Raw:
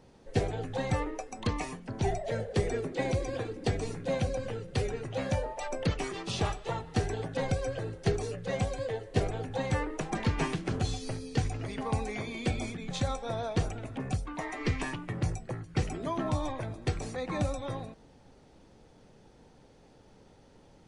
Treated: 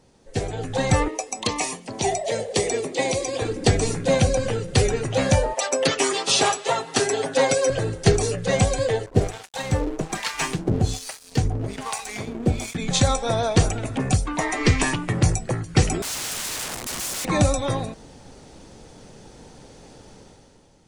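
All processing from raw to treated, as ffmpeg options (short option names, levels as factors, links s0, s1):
-filter_complex "[0:a]asettb=1/sr,asplit=3[s0][s1][s2];[s0]atrim=end=1.084[s3];[s1]atrim=start=1.08:end=3.42,asetpts=PTS-STARTPTS,afade=t=in:d=0.004:c=qsin,afade=t=out:st=2.336:d=0.004:c=qsin,highpass=f=540:p=1,equalizer=f=1500:t=o:w=0.43:g=-12[s4];[s2]atrim=start=3.416[s5];[s3][s4]acrossfade=d=0.004:c1=hsin:c2=qsin[s6];[s6][s5]acrossfade=d=0.004:c1=qsin:c2=hsin,asettb=1/sr,asplit=3[s7][s8][s9];[s7]atrim=end=5.544[s10];[s8]atrim=start=5.54:end=7.7,asetpts=PTS-STARTPTS,afade=t=in:d=0.004:c=qsin,afade=t=out:st=2.156:d=0.004:c=qsin,highpass=340,aecho=1:1:7.4:0.72,atrim=end_sample=95256[s11];[s9]atrim=start=7.696[s12];[s10][s11]acrossfade=d=0.004:c1=hsin:c2=qsin[s13];[s13][s12]acrossfade=d=0.004:c1=qsin:c2=hsin,asettb=1/sr,asplit=3[s14][s15][s16];[s14]atrim=end=9.064[s17];[s15]atrim=start=9.06:end=12.75,asetpts=PTS-STARTPTS,afade=t=in:d=0.004:c=qsin,afade=t=out:st=3.686:d=0.004:c=qsin,acrossover=split=750[s18][s19];[s18]aeval=exprs='val(0)*(1-1/2+1/2*cos(2*PI*1.2*n/s))':c=same[s20];[s19]aeval=exprs='val(0)*(1-1/2-1/2*cos(2*PI*1.2*n/s))':c=same[s21];[s20][s21]amix=inputs=2:normalize=0,aeval=exprs='sgn(val(0))*max(abs(val(0))-0.00316,0)':c=same[s22];[s16]atrim=start=12.746[s23];[s17][s22]acrossfade=d=0.004:c1=hsin:c2=qsin[s24];[s24][s23]acrossfade=d=0.004:c1=qsin:c2=hsin,asettb=1/sr,asplit=3[s25][s26][s27];[s25]atrim=end=16.024[s28];[s26]atrim=start=16.02:end=17.25,asetpts=PTS-STARTPTS,afade=t=in:d=0.004:c=qsin,afade=t=out:st=1.226:d=0.004:c=qsin,acompressor=threshold=0.0251:ratio=5:attack=3.2:release=140:knee=1:detection=peak,aeval=exprs='(mod(106*val(0)+1,2)-1)/106':c=same[s29];[s27]atrim=start=17.246[s30];[s28][s29]acrossfade=d=0.004:c1=hsin:c2=qsin[s31];[s31][s30]acrossfade=d=0.004:c1=qsin:c2=hsin,equalizer=f=8000:t=o:w=1.5:g=9,dynaudnorm=f=100:g=13:m=3.98"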